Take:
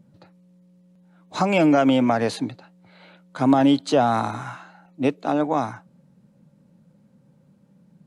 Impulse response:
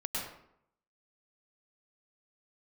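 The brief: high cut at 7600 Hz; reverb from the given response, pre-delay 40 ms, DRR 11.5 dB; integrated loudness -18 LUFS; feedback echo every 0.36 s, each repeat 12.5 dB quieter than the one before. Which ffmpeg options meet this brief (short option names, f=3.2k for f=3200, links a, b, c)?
-filter_complex "[0:a]lowpass=7.6k,aecho=1:1:360|720|1080:0.237|0.0569|0.0137,asplit=2[a][b];[1:a]atrim=start_sample=2205,adelay=40[c];[b][c]afir=irnorm=-1:irlink=0,volume=-15.5dB[d];[a][d]amix=inputs=2:normalize=0,volume=2.5dB"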